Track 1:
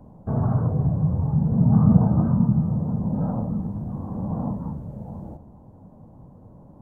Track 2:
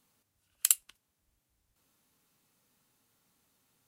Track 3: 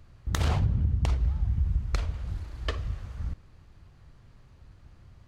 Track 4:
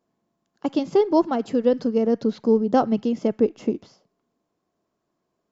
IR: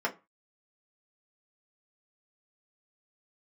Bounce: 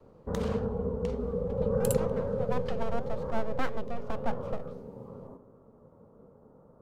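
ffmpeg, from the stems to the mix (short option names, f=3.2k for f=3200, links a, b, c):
-filter_complex "[0:a]aeval=exprs='val(0)*sin(2*PI*330*n/s)':c=same,volume=-2dB[a];[1:a]adelay=1200,volume=-7.5dB[b];[2:a]volume=-6.5dB[c];[3:a]lowpass=2.9k,aeval=exprs='abs(val(0))':c=same,adelay=850,volume=-5dB,afade=t=in:st=2.37:d=0.26:silence=0.251189[d];[a][b][c][d]amix=inputs=4:normalize=0,flanger=delay=7.8:depth=4.1:regen=89:speed=1.6:shape=triangular,adynamicequalizer=threshold=0.00794:dfrequency=150:dqfactor=0.86:tfrequency=150:tqfactor=0.86:attack=5:release=100:ratio=0.375:range=3:mode=cutabove:tftype=bell"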